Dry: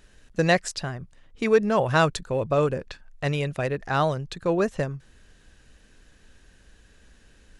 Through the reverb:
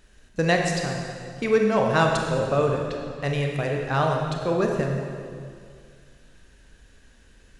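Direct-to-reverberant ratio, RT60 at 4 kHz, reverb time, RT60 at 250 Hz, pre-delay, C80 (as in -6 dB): 1.0 dB, 1.8 s, 2.2 s, 2.3 s, 23 ms, 4.0 dB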